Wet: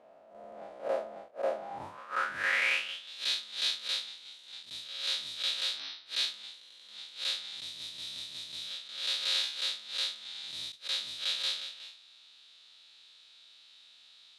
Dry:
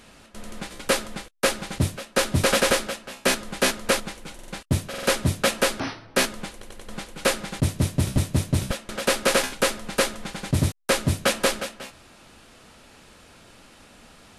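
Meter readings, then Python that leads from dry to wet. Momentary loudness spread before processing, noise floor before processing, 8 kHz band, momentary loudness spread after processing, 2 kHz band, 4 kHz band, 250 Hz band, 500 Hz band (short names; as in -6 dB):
17 LU, -51 dBFS, -17.0 dB, 17 LU, -8.0 dB, -2.5 dB, under -25 dB, -15.0 dB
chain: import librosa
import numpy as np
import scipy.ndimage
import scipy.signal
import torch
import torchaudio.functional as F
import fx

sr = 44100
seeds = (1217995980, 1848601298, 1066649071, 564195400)

y = fx.spec_blur(x, sr, span_ms=100.0)
y = fx.filter_sweep_bandpass(y, sr, from_hz=650.0, to_hz=3800.0, start_s=1.57, end_s=3.12, q=6.6)
y = scipy.signal.sosfilt(scipy.signal.butter(2, 51.0, 'highpass', fs=sr, output='sos'), y)
y = y * librosa.db_to_amplitude(7.5)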